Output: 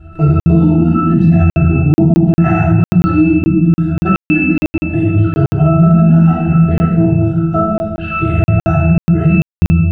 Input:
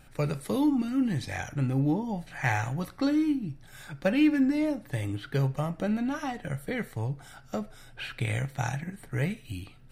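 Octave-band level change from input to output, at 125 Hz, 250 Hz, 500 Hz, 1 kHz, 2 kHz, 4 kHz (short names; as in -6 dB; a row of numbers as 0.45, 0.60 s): +21.5 dB, +17.0 dB, +15.0 dB, +16.0 dB, +12.0 dB, n/a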